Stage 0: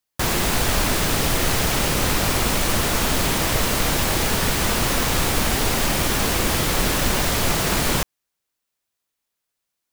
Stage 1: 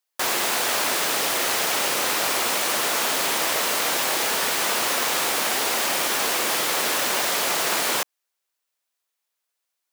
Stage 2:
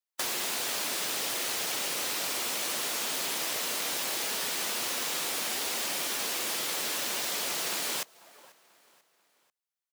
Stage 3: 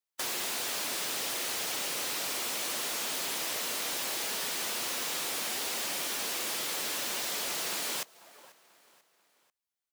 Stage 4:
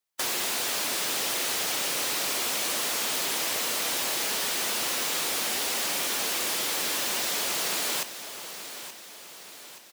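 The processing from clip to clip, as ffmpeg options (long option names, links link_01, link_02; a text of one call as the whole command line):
ffmpeg -i in.wav -af "highpass=480" out.wav
ffmpeg -i in.wav -filter_complex "[0:a]aecho=1:1:490|980|1470:0.0944|0.0434|0.02,afftdn=noise_reduction=13:noise_floor=-36,acrossover=split=140|420|2500[link_01][link_02][link_03][link_04];[link_01]acompressor=threshold=-60dB:ratio=4[link_05];[link_02]acompressor=threshold=-48dB:ratio=4[link_06];[link_03]acompressor=threshold=-42dB:ratio=4[link_07];[link_04]acompressor=threshold=-31dB:ratio=4[link_08];[link_05][link_06][link_07][link_08]amix=inputs=4:normalize=0" out.wav
ffmpeg -i in.wav -af "asoftclip=type=tanh:threshold=-27dB" out.wav
ffmpeg -i in.wav -af "aecho=1:1:876|1752|2628|3504|4380:0.251|0.128|0.0653|0.0333|0.017,volume=5dB" out.wav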